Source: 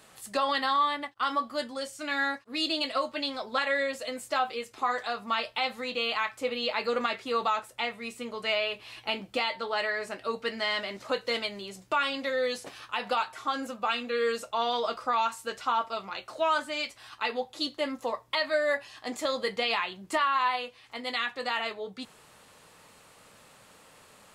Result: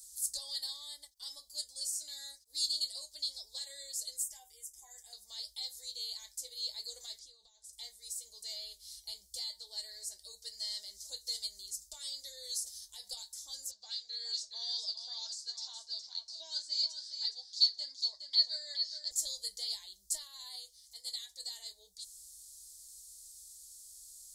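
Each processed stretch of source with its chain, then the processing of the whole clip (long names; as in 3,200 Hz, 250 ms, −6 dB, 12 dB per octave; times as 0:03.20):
0:04.23–0:05.13: parametric band 290 Hz −8.5 dB 0.23 octaves + phaser with its sweep stopped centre 850 Hz, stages 8
0:07.19–0:07.73: downward compressor 16 to 1, threshold −38 dBFS + high-frequency loss of the air 74 metres
0:13.71–0:19.11: loudspeaker in its box 140–5,900 Hz, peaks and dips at 190 Hz −6 dB, 490 Hz −9 dB, 1,600 Hz +7 dB, 4,500 Hz +9 dB + single-tap delay 415 ms −7.5 dB
whole clip: inverse Chebyshev band-stop filter 110–2,800 Hz, stop band 40 dB; low-shelf EQ 83 Hz −8.5 dB; level +10 dB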